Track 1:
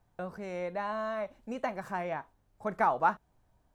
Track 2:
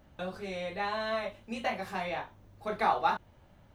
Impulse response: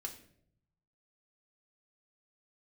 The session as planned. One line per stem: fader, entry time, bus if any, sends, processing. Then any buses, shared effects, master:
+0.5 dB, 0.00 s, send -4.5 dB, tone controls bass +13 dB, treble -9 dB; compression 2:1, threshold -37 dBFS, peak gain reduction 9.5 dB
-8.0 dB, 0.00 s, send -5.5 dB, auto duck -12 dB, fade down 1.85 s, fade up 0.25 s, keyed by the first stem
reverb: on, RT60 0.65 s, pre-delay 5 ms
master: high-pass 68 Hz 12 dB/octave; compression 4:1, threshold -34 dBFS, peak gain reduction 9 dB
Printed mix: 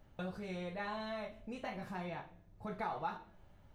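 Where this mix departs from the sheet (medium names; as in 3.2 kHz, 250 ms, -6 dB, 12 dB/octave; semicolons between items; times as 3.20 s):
stem 1 +0.5 dB -> -9.5 dB; master: missing high-pass 68 Hz 12 dB/octave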